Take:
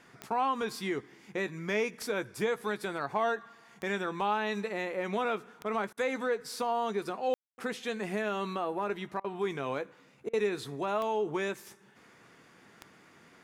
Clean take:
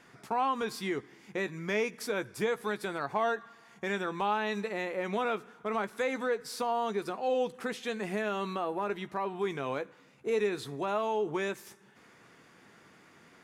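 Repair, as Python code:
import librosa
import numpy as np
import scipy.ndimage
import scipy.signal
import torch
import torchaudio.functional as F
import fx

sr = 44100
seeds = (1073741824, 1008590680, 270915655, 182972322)

y = fx.fix_declick_ar(x, sr, threshold=10.0)
y = fx.fix_ambience(y, sr, seeds[0], print_start_s=11.75, print_end_s=12.25, start_s=7.34, end_s=7.58)
y = fx.fix_interpolate(y, sr, at_s=(5.93, 9.2, 10.29), length_ms=42.0)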